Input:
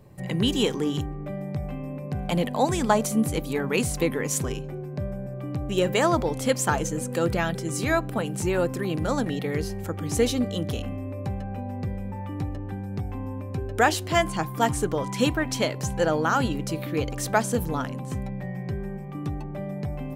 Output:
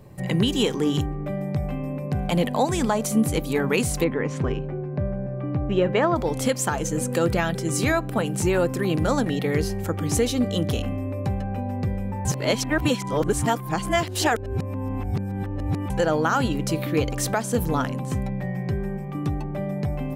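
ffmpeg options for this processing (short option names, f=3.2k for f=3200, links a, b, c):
-filter_complex "[0:a]asettb=1/sr,asplit=3[a][b][c];[a]atrim=end=4.044[d];[b]atrim=start=4.04:end=6.16,asetpts=PTS-STARTPTS,afade=t=in:d=0.004:c=qsin,afade=t=out:st=2.116:d=0.004:c=qsin,lowpass=2.2k[e];[c]atrim=start=6.156[f];[d][e]acrossfade=d=0.004:c1=hsin:c2=qsin[g];[g][f]acrossfade=d=0.004:c1=qsin:c2=hsin,asplit=3[h][i][j];[h]atrim=end=12.252[k];[i]atrim=start=12.248:end=15.902,asetpts=PTS-STARTPTS,areverse[l];[j]atrim=start=15.898[m];[k][l]acrossfade=d=0.004:c1=hsin:c2=hsin[n];[n][m]acrossfade=d=0.004:c1=hsin:c2=hsin,alimiter=limit=-15.5dB:level=0:latency=1:release=313,volume=4.5dB"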